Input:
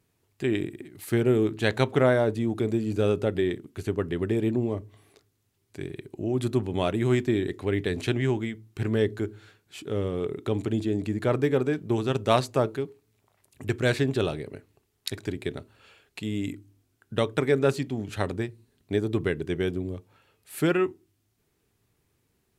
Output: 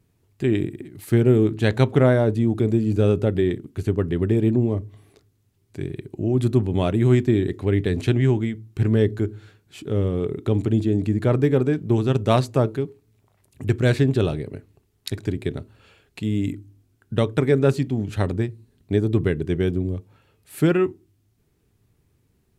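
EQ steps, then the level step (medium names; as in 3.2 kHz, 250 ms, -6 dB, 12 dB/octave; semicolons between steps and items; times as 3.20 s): bass shelf 310 Hz +10.5 dB; 0.0 dB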